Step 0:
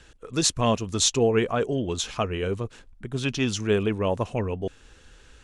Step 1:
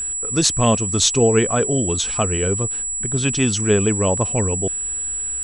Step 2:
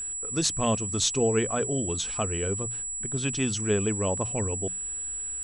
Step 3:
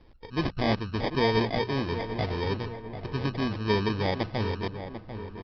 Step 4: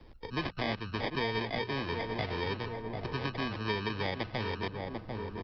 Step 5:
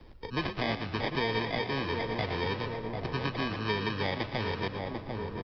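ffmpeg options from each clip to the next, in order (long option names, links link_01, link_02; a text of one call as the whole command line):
ffmpeg -i in.wav -af "aeval=exprs='val(0)+0.0447*sin(2*PI*7800*n/s)':channel_layout=same,lowshelf=frequency=180:gain=4.5,volume=4.5dB" out.wav
ffmpeg -i in.wav -af "bandreject=frequency=60:width_type=h:width=6,bandreject=frequency=120:width_type=h:width=6,bandreject=frequency=180:width_type=h:width=6,volume=-8.5dB" out.wav
ffmpeg -i in.wav -filter_complex "[0:a]aresample=11025,acrusher=samples=8:mix=1:aa=0.000001,aresample=44100,asplit=2[link_01][link_02];[link_02]adelay=744,lowpass=frequency=2000:poles=1,volume=-10dB,asplit=2[link_03][link_04];[link_04]adelay=744,lowpass=frequency=2000:poles=1,volume=0.51,asplit=2[link_05][link_06];[link_06]adelay=744,lowpass=frequency=2000:poles=1,volume=0.51,asplit=2[link_07][link_08];[link_08]adelay=744,lowpass=frequency=2000:poles=1,volume=0.51,asplit=2[link_09][link_10];[link_10]adelay=744,lowpass=frequency=2000:poles=1,volume=0.51,asplit=2[link_11][link_12];[link_12]adelay=744,lowpass=frequency=2000:poles=1,volume=0.51[link_13];[link_01][link_03][link_05][link_07][link_09][link_11][link_13]amix=inputs=7:normalize=0" out.wav
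ffmpeg -i in.wav -filter_complex "[0:a]acrossover=split=93|480|1600|3900[link_01][link_02][link_03][link_04][link_05];[link_01]acompressor=threshold=-50dB:ratio=4[link_06];[link_02]acompressor=threshold=-40dB:ratio=4[link_07];[link_03]acompressor=threshold=-40dB:ratio=4[link_08];[link_04]acompressor=threshold=-38dB:ratio=4[link_09];[link_05]acompressor=threshold=-56dB:ratio=4[link_10];[link_06][link_07][link_08][link_09][link_10]amix=inputs=5:normalize=0,volume=2dB" out.wav
ffmpeg -i in.wav -filter_complex "[0:a]asplit=6[link_01][link_02][link_03][link_04][link_05][link_06];[link_02]adelay=115,afreqshift=43,volume=-11dB[link_07];[link_03]adelay=230,afreqshift=86,volume=-17dB[link_08];[link_04]adelay=345,afreqshift=129,volume=-23dB[link_09];[link_05]adelay=460,afreqshift=172,volume=-29.1dB[link_10];[link_06]adelay=575,afreqshift=215,volume=-35.1dB[link_11];[link_01][link_07][link_08][link_09][link_10][link_11]amix=inputs=6:normalize=0,volume=2dB" out.wav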